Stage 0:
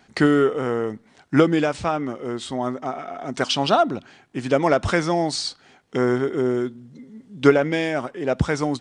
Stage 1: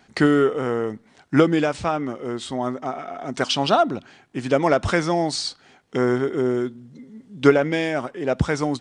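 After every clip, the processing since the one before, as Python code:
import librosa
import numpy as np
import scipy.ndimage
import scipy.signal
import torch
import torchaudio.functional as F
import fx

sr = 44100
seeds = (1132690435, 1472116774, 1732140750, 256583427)

y = x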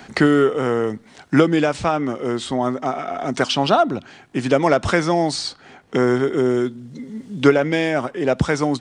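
y = fx.band_squash(x, sr, depth_pct=40)
y = F.gain(torch.from_numpy(y), 3.0).numpy()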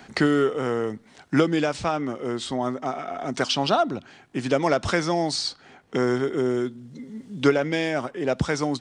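y = fx.dynamic_eq(x, sr, hz=5000.0, q=1.1, threshold_db=-38.0, ratio=4.0, max_db=5)
y = F.gain(torch.from_numpy(y), -5.5).numpy()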